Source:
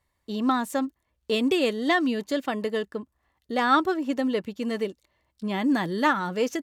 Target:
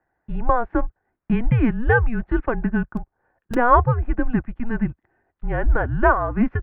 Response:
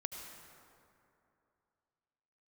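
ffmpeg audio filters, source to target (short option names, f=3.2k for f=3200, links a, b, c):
-filter_complex "[0:a]highpass=f=170:t=q:w=0.5412,highpass=f=170:t=q:w=1.307,lowpass=f=2.1k:t=q:w=0.5176,lowpass=f=2.1k:t=q:w=0.7071,lowpass=f=2.1k:t=q:w=1.932,afreqshift=-240,asplit=3[a][b][c];[a]afade=t=out:st=2.97:d=0.02[d];[b]aeval=exprs='(mod(17.8*val(0)+1,2)-1)/17.8':c=same,afade=t=in:st=2.97:d=0.02,afade=t=out:st=3.53:d=0.02[e];[c]afade=t=in:st=3.53:d=0.02[f];[d][e][f]amix=inputs=3:normalize=0,volume=6.5dB"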